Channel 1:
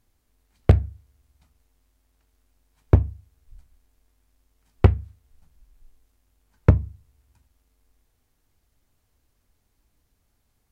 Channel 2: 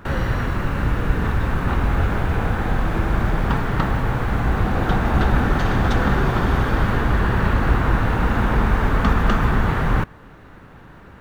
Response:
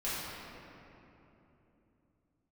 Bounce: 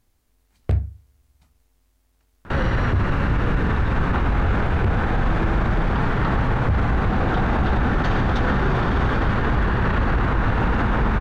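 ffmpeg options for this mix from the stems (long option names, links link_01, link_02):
-filter_complex "[0:a]volume=2.5dB[link_01];[1:a]lowpass=5100,adelay=2450,volume=2.5dB[link_02];[link_01][link_02]amix=inputs=2:normalize=0,alimiter=limit=-12dB:level=0:latency=1:release=25"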